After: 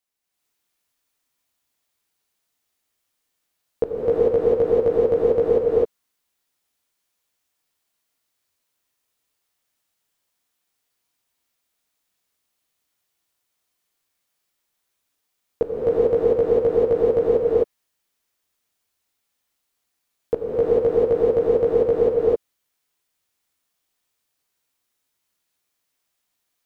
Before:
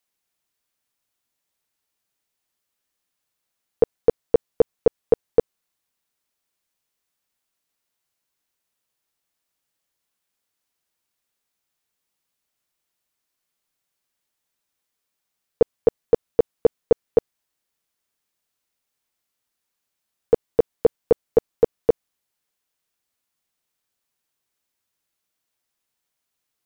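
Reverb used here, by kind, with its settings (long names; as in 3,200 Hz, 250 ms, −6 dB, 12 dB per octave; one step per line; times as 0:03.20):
reverb whose tail is shaped and stops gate 460 ms rising, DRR −8 dB
level −5 dB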